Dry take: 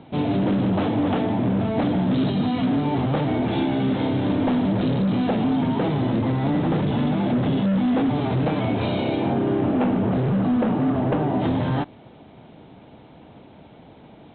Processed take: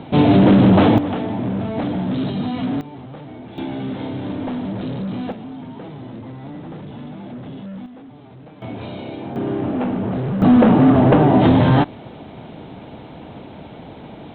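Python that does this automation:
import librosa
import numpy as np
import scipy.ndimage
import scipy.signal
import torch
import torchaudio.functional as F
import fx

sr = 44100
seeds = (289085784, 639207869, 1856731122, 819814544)

y = fx.gain(x, sr, db=fx.steps((0.0, 10.0), (0.98, -1.0), (2.81, -13.5), (3.58, -4.5), (5.32, -12.0), (7.86, -19.5), (8.62, -7.5), (9.36, -1.0), (10.42, 9.5)))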